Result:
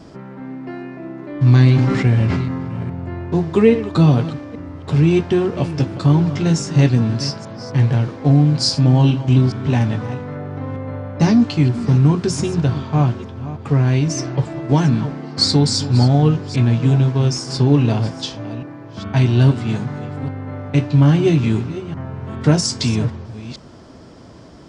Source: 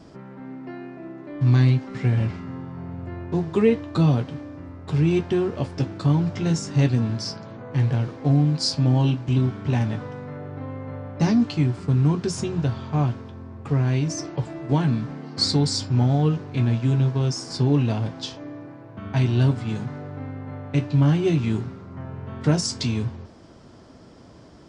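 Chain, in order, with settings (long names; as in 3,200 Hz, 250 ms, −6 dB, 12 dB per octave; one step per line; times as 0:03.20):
delay that plays each chunk backwards 414 ms, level −13.5 dB
0:01.19–0:02.83: level that may fall only so fast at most 27 dB per second
level +6 dB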